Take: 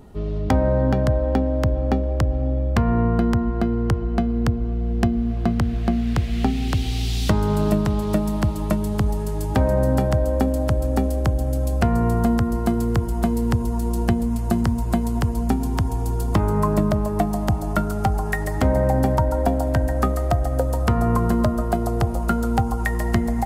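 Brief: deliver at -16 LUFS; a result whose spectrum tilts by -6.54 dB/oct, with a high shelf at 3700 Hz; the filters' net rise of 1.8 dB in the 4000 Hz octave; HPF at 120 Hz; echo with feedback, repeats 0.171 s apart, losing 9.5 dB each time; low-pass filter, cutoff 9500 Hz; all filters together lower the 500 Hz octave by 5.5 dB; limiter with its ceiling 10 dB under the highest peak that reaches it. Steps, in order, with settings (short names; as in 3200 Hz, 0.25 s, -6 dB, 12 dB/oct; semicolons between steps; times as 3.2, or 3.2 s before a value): HPF 120 Hz; LPF 9500 Hz; bell 500 Hz -7 dB; high shelf 3700 Hz -5.5 dB; bell 4000 Hz +6 dB; limiter -18.5 dBFS; feedback echo 0.171 s, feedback 33%, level -9.5 dB; gain +11.5 dB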